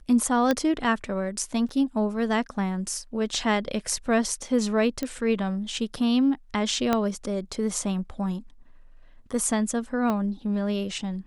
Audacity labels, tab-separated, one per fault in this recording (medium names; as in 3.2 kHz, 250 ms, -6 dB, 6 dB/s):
0.510000	0.510000	pop -10 dBFS
1.690000	1.690000	dropout 3.1 ms
5.030000	5.030000	pop -15 dBFS
6.930000	6.930000	pop -9 dBFS
10.100000	10.100000	pop -15 dBFS